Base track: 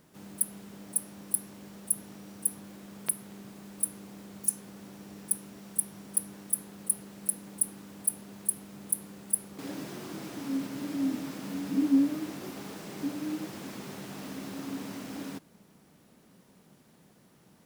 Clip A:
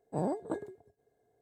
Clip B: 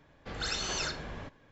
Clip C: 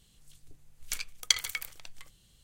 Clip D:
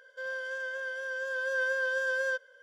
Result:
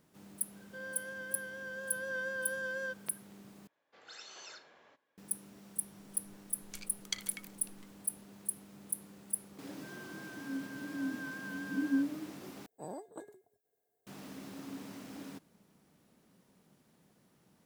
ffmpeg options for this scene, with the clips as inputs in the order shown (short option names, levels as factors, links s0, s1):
-filter_complex "[4:a]asplit=2[s0][s1];[0:a]volume=0.422[s2];[2:a]highpass=430[s3];[s1]lowshelf=f=750:t=q:w=3:g=-9.5[s4];[1:a]aemphasis=mode=production:type=bsi[s5];[s2]asplit=3[s6][s7][s8];[s6]atrim=end=3.674[s9];[s3]atrim=end=1.51,asetpts=PTS-STARTPTS,volume=0.158[s10];[s7]atrim=start=5.176:end=12.664[s11];[s5]atrim=end=1.41,asetpts=PTS-STARTPTS,volume=0.335[s12];[s8]atrim=start=14.066[s13];[s0]atrim=end=2.62,asetpts=PTS-STARTPTS,volume=0.398,afade=t=in:d=0.004:c=hsin,afade=t=out:st=2.616:d=0.004:c=hsin,adelay=560[s14];[3:a]atrim=end=2.43,asetpts=PTS-STARTPTS,volume=0.237,afade=t=in:d=0.004:c=hsin,afade=t=out:st=2.426:d=0.004:c=hsin,adelay=5820[s15];[s4]atrim=end=2.62,asetpts=PTS-STARTPTS,volume=0.141,afade=t=in:d=0.004:c=hsin,afade=t=out:st=2.616:d=0.004:c=hsin,adelay=9650[s16];[s9][s10]acrossfade=d=0.004:c1=hsin:c2=hsin[s17];[s17][s11]acrossfade=d=0.004:c1=hsin:c2=hsin[s18];[s18][s12]acrossfade=d=0.004:c1=hsin:c2=hsin[s19];[s19][s13]acrossfade=d=0.004:c1=hsin:c2=hsin[s20];[s20][s14][s15][s16]amix=inputs=4:normalize=0"